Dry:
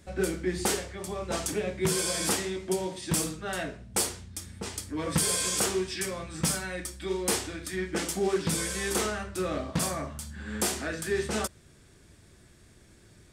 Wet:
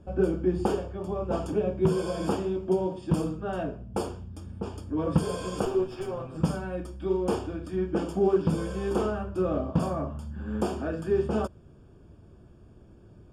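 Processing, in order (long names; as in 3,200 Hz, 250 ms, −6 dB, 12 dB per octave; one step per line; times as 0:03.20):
0:05.65–0:06.37: lower of the sound and its delayed copy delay 7.8 ms
moving average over 22 samples
level +5 dB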